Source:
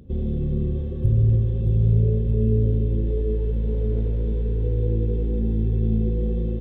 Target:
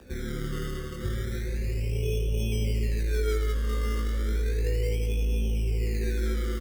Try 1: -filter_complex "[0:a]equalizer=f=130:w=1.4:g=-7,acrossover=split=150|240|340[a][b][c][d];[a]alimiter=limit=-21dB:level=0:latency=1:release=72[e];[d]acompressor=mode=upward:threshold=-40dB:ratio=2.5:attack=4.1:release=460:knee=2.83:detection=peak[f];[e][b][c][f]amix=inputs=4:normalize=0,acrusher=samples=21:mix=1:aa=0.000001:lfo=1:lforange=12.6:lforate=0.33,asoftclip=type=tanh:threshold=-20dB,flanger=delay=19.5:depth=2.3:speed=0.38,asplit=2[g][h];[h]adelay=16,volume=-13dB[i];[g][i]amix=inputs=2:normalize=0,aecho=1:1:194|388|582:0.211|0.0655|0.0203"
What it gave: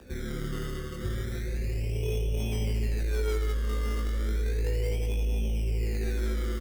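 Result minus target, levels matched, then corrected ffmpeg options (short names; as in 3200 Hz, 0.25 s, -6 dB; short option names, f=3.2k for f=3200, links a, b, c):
soft clip: distortion +14 dB
-filter_complex "[0:a]equalizer=f=130:w=1.4:g=-7,acrossover=split=150|240|340[a][b][c][d];[a]alimiter=limit=-21dB:level=0:latency=1:release=72[e];[d]acompressor=mode=upward:threshold=-40dB:ratio=2.5:attack=4.1:release=460:knee=2.83:detection=peak[f];[e][b][c][f]amix=inputs=4:normalize=0,acrusher=samples=21:mix=1:aa=0.000001:lfo=1:lforange=12.6:lforate=0.33,asoftclip=type=tanh:threshold=-11.5dB,flanger=delay=19.5:depth=2.3:speed=0.38,asplit=2[g][h];[h]adelay=16,volume=-13dB[i];[g][i]amix=inputs=2:normalize=0,aecho=1:1:194|388|582:0.211|0.0655|0.0203"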